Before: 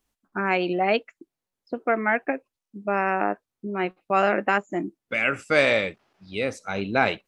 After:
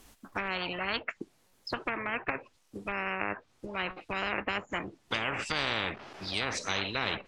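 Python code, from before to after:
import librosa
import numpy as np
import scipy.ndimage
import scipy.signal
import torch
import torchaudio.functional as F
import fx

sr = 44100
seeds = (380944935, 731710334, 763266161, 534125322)

y = fx.env_lowpass_down(x, sr, base_hz=1400.0, full_db=-21.5)
y = fx.spectral_comp(y, sr, ratio=10.0)
y = y * 10.0 ** (-5.5 / 20.0)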